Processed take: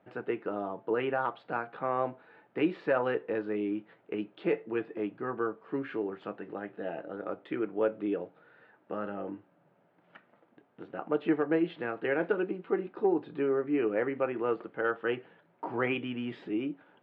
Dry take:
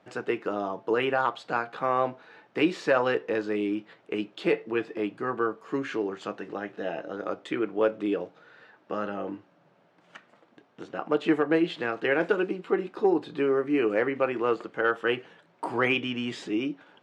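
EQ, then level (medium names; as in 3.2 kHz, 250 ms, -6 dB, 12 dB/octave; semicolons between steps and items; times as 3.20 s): distance through air 430 m; band-stop 1.1 kHz, Q 17; -3.0 dB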